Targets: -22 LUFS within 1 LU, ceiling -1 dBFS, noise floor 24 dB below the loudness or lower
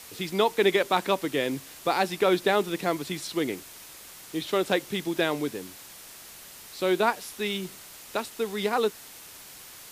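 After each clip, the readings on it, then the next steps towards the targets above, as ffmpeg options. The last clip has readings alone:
noise floor -46 dBFS; noise floor target -51 dBFS; loudness -27.0 LUFS; peak -9.5 dBFS; loudness target -22.0 LUFS
-> -af "afftdn=nr=6:nf=-46"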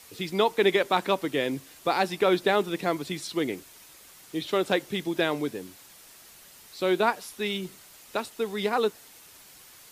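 noise floor -52 dBFS; loudness -27.5 LUFS; peak -9.5 dBFS; loudness target -22.0 LUFS
-> -af "volume=5.5dB"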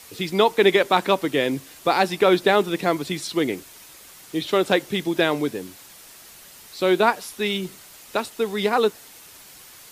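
loudness -22.0 LUFS; peak -4.0 dBFS; noise floor -46 dBFS

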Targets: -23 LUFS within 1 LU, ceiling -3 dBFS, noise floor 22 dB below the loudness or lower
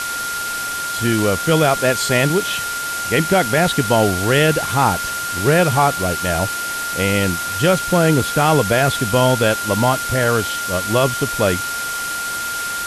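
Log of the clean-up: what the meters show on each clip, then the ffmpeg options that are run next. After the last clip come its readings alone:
steady tone 1400 Hz; tone level -23 dBFS; noise floor -24 dBFS; noise floor target -40 dBFS; loudness -17.5 LUFS; peak -2.5 dBFS; loudness target -23.0 LUFS
-> -af "bandreject=f=1.4k:w=30"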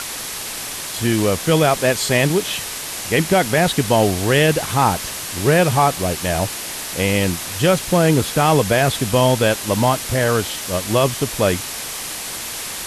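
steady tone none; noise floor -29 dBFS; noise floor target -40 dBFS
-> -af "afftdn=nr=11:nf=-29"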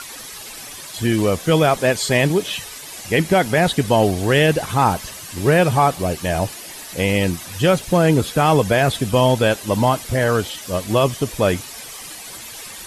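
noise floor -35 dBFS; noise floor target -40 dBFS
-> -af "afftdn=nr=6:nf=-35"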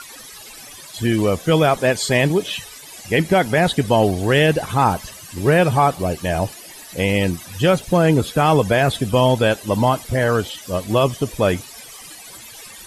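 noise floor -39 dBFS; noise floor target -41 dBFS
-> -af "afftdn=nr=6:nf=-39"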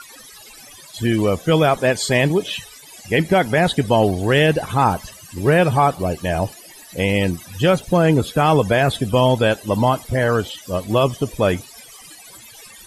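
noise floor -42 dBFS; loudness -18.5 LUFS; peak -4.0 dBFS; loudness target -23.0 LUFS
-> -af "volume=-4.5dB"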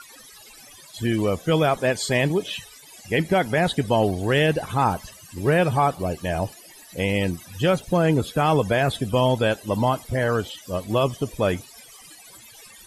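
loudness -23.0 LUFS; peak -8.5 dBFS; noise floor -47 dBFS

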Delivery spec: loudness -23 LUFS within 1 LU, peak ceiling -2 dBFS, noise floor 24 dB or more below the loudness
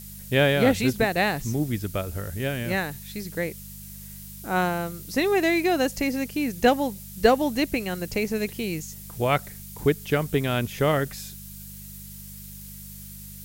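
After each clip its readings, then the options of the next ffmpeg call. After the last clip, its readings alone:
hum 50 Hz; harmonics up to 200 Hz; hum level -41 dBFS; noise floor -41 dBFS; noise floor target -49 dBFS; loudness -25.0 LUFS; peak -6.0 dBFS; loudness target -23.0 LUFS
-> -af "bandreject=f=50:t=h:w=4,bandreject=f=100:t=h:w=4,bandreject=f=150:t=h:w=4,bandreject=f=200:t=h:w=4"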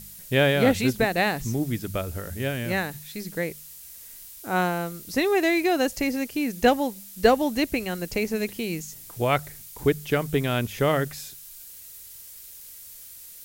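hum none; noise floor -44 dBFS; noise floor target -49 dBFS
-> -af "afftdn=nr=6:nf=-44"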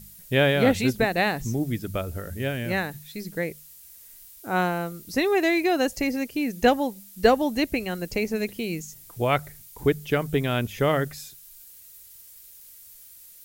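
noise floor -48 dBFS; noise floor target -49 dBFS
-> -af "afftdn=nr=6:nf=-48"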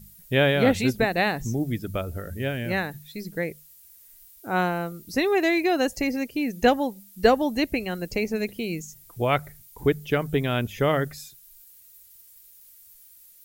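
noise floor -52 dBFS; loudness -25.0 LUFS; peak -6.0 dBFS; loudness target -23.0 LUFS
-> -af "volume=2dB"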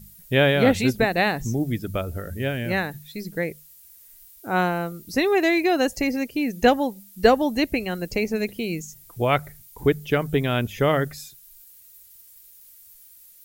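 loudness -23.0 LUFS; peak -4.0 dBFS; noise floor -50 dBFS

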